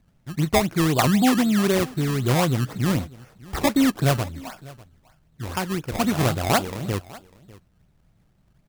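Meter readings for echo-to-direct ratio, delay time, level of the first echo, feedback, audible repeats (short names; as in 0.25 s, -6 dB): -21.5 dB, 0.598 s, -21.5 dB, no steady repeat, 1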